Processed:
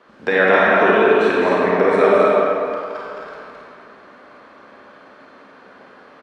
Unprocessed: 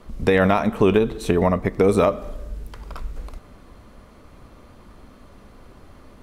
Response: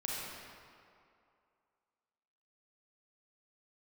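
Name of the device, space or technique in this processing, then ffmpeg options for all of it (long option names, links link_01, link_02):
station announcement: -filter_complex "[0:a]highpass=380,lowpass=4100,equalizer=frequency=1600:width_type=o:width=0.29:gain=10,aecho=1:1:212.8|268.2:0.562|0.501[link_01];[1:a]atrim=start_sample=2205[link_02];[link_01][link_02]afir=irnorm=-1:irlink=0,volume=2dB"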